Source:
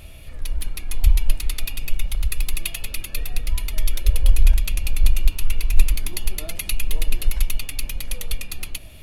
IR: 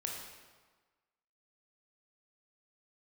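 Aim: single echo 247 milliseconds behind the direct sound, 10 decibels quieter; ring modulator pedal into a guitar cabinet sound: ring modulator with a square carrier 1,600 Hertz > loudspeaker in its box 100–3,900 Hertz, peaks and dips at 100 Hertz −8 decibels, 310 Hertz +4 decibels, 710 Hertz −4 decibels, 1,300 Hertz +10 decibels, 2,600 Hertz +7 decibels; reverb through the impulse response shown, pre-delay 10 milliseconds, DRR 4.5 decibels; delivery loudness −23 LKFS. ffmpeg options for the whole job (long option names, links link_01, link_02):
-filter_complex "[0:a]aecho=1:1:247:0.316,asplit=2[link_01][link_02];[1:a]atrim=start_sample=2205,adelay=10[link_03];[link_02][link_03]afir=irnorm=-1:irlink=0,volume=-5.5dB[link_04];[link_01][link_04]amix=inputs=2:normalize=0,aeval=exprs='val(0)*sgn(sin(2*PI*1600*n/s))':channel_layout=same,highpass=100,equalizer=frequency=100:width_type=q:width=4:gain=-8,equalizer=frequency=310:width_type=q:width=4:gain=4,equalizer=frequency=710:width_type=q:width=4:gain=-4,equalizer=frequency=1300:width_type=q:width=4:gain=10,equalizer=frequency=2600:width_type=q:width=4:gain=7,lowpass=frequency=3900:width=0.5412,lowpass=frequency=3900:width=1.3066,volume=-13.5dB"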